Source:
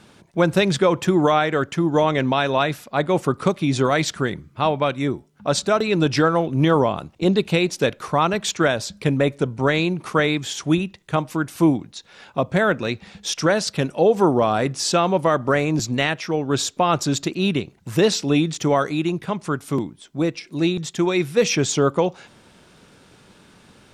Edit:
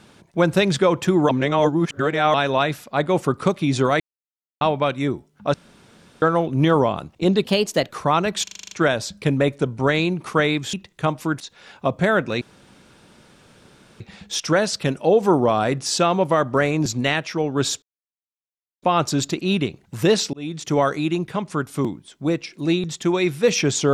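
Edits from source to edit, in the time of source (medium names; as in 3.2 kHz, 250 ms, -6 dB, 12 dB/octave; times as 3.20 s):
1.29–2.34 s: reverse
4.00–4.61 s: mute
5.54–6.22 s: room tone
7.44–7.97 s: speed 117%
8.51 s: stutter 0.04 s, 8 plays
10.53–10.83 s: delete
11.50–11.93 s: delete
12.94 s: insert room tone 1.59 s
16.76 s: insert silence 1.00 s
18.27–18.71 s: fade in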